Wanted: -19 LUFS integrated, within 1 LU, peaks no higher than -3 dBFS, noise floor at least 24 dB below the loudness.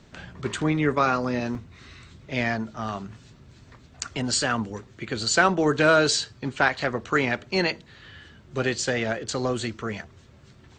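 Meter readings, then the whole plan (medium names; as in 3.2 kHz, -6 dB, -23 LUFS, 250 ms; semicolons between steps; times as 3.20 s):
dropouts 1; longest dropout 2.1 ms; loudness -25.0 LUFS; peak level -5.5 dBFS; loudness target -19.0 LUFS
-> interpolate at 1.55 s, 2.1 ms; trim +6 dB; peak limiter -3 dBFS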